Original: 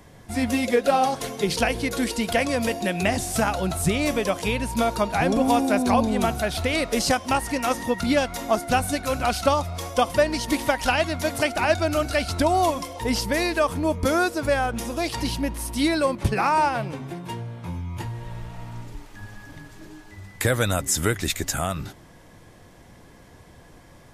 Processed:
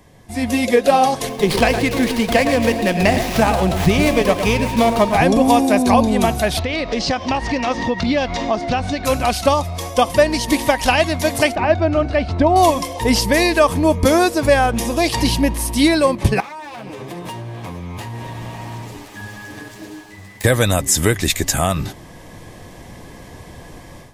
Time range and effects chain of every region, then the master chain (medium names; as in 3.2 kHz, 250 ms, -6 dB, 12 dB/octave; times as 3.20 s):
1.29–5.17 s: echo whose repeats swap between lows and highs 113 ms, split 2.4 kHz, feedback 61%, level -8.5 dB + sliding maximum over 5 samples
6.59–9.05 s: low-pass 5.2 kHz 24 dB/octave + compression 2.5:1, threshold -29 dBFS
11.55–12.56 s: high-pass 43 Hz + tape spacing loss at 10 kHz 32 dB
16.40–20.44 s: comb filter that takes the minimum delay 9.6 ms + high-pass 170 Hz 6 dB/octave + compression 20:1, threshold -36 dBFS
whole clip: band-stop 1.4 kHz, Q 6.7; level rider